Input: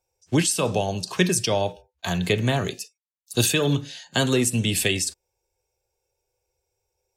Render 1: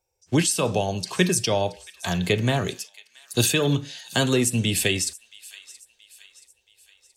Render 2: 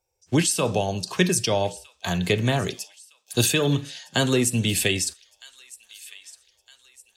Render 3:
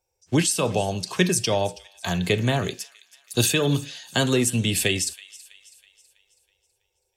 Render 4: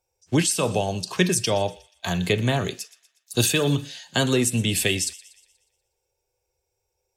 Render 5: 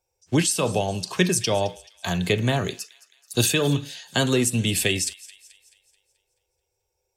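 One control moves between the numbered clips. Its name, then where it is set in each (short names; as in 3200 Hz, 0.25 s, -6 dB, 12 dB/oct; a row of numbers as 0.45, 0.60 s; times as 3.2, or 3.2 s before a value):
thin delay, time: 0.676, 1.261, 0.325, 0.12, 0.216 s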